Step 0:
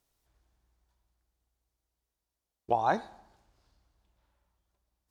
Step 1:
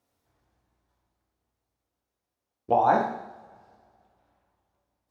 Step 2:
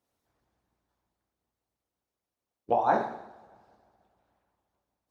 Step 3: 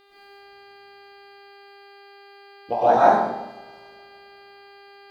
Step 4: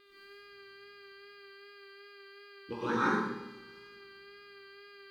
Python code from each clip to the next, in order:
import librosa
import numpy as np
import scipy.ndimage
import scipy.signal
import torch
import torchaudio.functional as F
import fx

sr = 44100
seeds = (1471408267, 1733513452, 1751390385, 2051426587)

y1 = scipy.signal.sosfilt(scipy.signal.butter(2, 94.0, 'highpass', fs=sr, output='sos'), x)
y1 = fx.high_shelf(y1, sr, hz=2500.0, db=-10.5)
y1 = fx.rev_double_slope(y1, sr, seeds[0], early_s=0.71, late_s=2.4, knee_db=-22, drr_db=-1.0)
y1 = y1 * librosa.db_to_amplitude(4.0)
y2 = fx.hpss(y1, sr, part='harmonic', gain_db=-10)
y3 = fx.high_shelf(y2, sr, hz=4300.0, db=9.5)
y3 = fx.dmg_buzz(y3, sr, base_hz=400.0, harmonics=12, level_db=-56.0, tilt_db=-4, odd_only=False)
y3 = fx.rev_freeverb(y3, sr, rt60_s=0.78, hf_ratio=0.45, predelay_ms=80, drr_db=-8.5)
y3 = y3 * librosa.db_to_amplitude(-1.0)
y4 = scipy.signal.sosfilt(scipy.signal.cheby1(2, 1.0, [380.0, 1200.0], 'bandstop', fs=sr, output='sos'), y3)
y4 = fx.wow_flutter(y4, sr, seeds[1], rate_hz=2.1, depth_cents=22.0)
y4 = fx.room_flutter(y4, sr, wall_m=10.3, rt60_s=0.31)
y4 = y4 * librosa.db_to_amplitude(-3.5)